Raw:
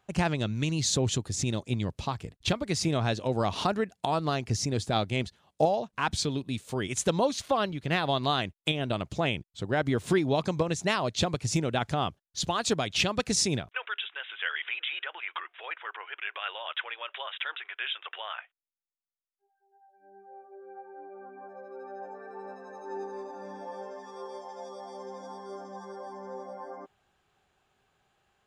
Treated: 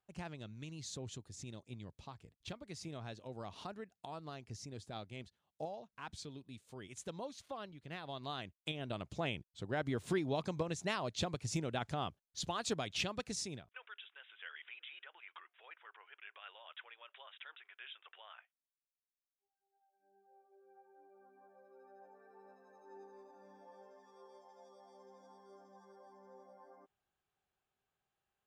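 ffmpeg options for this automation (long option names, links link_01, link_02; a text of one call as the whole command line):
ffmpeg -i in.wav -af "volume=-10dB,afade=type=in:start_time=8.03:duration=1.19:silence=0.354813,afade=type=out:start_time=12.91:duration=0.66:silence=0.398107" out.wav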